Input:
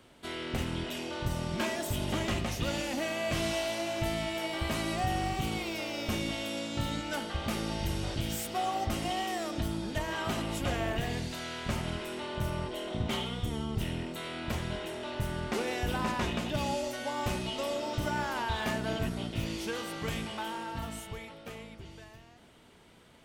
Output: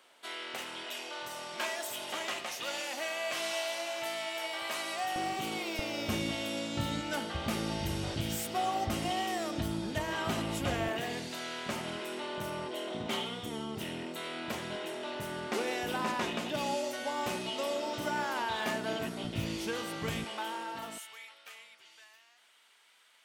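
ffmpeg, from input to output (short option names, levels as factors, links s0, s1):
-af "asetnsamples=n=441:p=0,asendcmd='5.16 highpass f 280;5.79 highpass f 81;10.88 highpass f 240;19.24 highpass f 81;20.24 highpass f 330;20.98 highpass f 1400',highpass=670"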